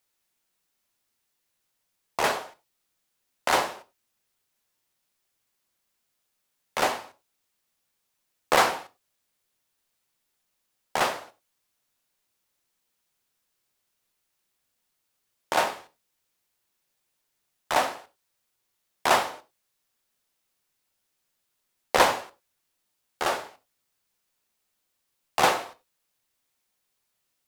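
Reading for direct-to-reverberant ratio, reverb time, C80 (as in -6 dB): 10.0 dB, not exponential, 23.5 dB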